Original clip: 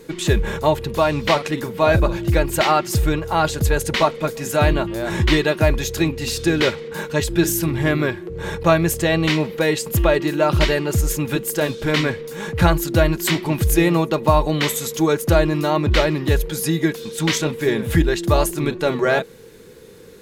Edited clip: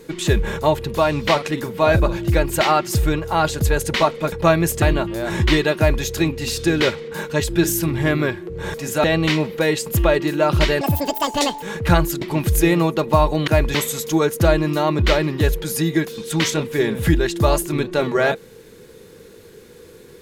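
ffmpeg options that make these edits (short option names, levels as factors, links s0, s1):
-filter_complex "[0:a]asplit=10[s0][s1][s2][s3][s4][s5][s6][s7][s8][s9];[s0]atrim=end=4.322[s10];[s1]atrim=start=8.538:end=9.042[s11];[s2]atrim=start=4.618:end=8.542[s12];[s3]atrim=start=4.318:end=4.622[s13];[s4]atrim=start=9.038:end=10.814[s14];[s5]atrim=start=10.81:end=12.35,asetpts=PTS-STARTPTS,asetrate=83349,aresample=44100,atrim=end_sample=35933,asetpts=PTS-STARTPTS[s15];[s6]atrim=start=12.346:end=12.942[s16];[s7]atrim=start=13.358:end=14.622[s17];[s8]atrim=start=5.568:end=5.842[s18];[s9]atrim=start=14.618[s19];[s10][s11]acrossfade=d=0.004:c1=hsin:c2=hsin[s20];[s20][s12]acrossfade=d=0.004:c1=hsin:c2=hsin[s21];[s21][s13]acrossfade=d=0.004:c1=hsin:c2=hsin[s22];[s22][s14]acrossfade=d=0.004:c1=hsin:c2=hsin[s23];[s23][s15]acrossfade=d=0.004:c1=hsin:c2=hsin[s24];[s24][s16]acrossfade=d=0.004:c1=hsin:c2=hsin[s25];[s25][s17]acrossfade=d=0.004:c1=hsin:c2=hsin[s26];[s26][s18]acrossfade=d=0.004:c1=hsin:c2=hsin[s27];[s27][s19]acrossfade=d=0.004:c1=hsin:c2=hsin"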